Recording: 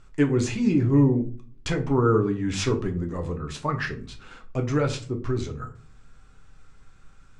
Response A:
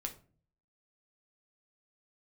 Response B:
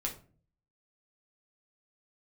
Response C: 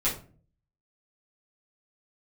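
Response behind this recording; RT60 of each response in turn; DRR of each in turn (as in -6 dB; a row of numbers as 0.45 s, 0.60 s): A; 0.45 s, 0.45 s, 0.40 s; 3.0 dB, -1.0 dB, -10.0 dB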